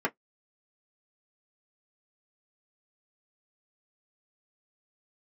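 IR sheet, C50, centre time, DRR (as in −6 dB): 34.0 dB, 6 ms, −1.5 dB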